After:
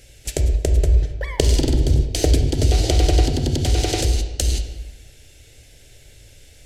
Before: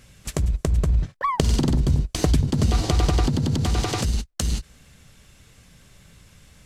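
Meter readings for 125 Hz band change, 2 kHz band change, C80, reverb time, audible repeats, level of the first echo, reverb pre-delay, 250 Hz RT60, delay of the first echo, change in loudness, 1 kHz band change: +3.0 dB, +2.0 dB, 9.5 dB, 1.2 s, no echo audible, no echo audible, 24 ms, 1.3 s, no echo audible, +3.5 dB, −3.5 dB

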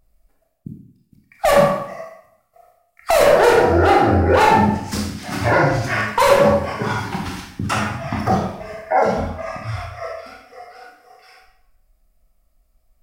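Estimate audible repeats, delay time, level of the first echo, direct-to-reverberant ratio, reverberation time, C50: no echo audible, no echo audible, no echo audible, −1.0 dB, 0.80 s, 3.0 dB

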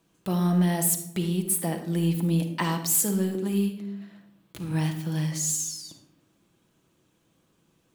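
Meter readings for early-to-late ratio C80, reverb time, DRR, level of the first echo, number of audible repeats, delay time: 11.0 dB, 0.80 s, 4.5 dB, no echo audible, no echo audible, no echo audible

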